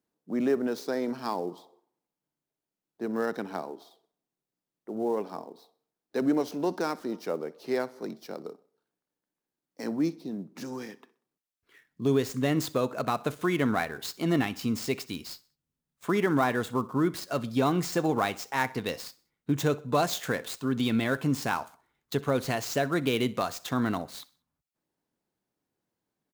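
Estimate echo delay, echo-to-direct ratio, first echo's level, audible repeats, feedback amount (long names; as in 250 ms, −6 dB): 63 ms, −20.5 dB, −21.0 dB, 2, 40%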